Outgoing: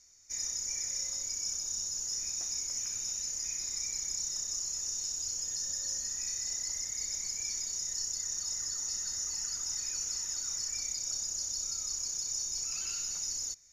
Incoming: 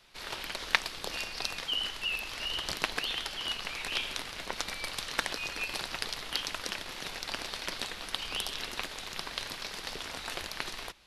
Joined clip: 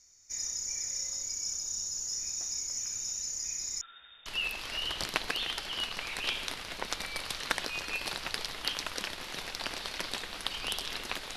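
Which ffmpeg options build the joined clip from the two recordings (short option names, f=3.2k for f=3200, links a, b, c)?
-filter_complex "[0:a]asettb=1/sr,asplit=3[a][b][c];[a]atrim=end=3.814[d];[b]atrim=start=3.81:end=4.26,asetpts=PTS-STARTPTS,afade=t=in:d=0.004:c=qsin,afade=t=out:st=0.446:d=0.004:c=qsin,lowpass=f=3.1k:t=q:w=0.5098,lowpass=f=3.1k:t=q:w=0.6013,lowpass=f=3.1k:t=q:w=0.9,lowpass=f=3.1k:t=q:w=2.563,afreqshift=-3700[e];[c]atrim=start=4.256[f];[d][e]acrossfade=d=0.004:c1=hsin:c2=qsin[g];[g][f]acrossfade=d=0.004:c1=qsin:c2=hsin,apad=whole_dur=11.36,atrim=end=11.36,atrim=end=4.262[h];[1:a]atrim=start=1.938:end=9.04[i];[h][i]acrossfade=d=0.004:c1=hsin:c2=hsin"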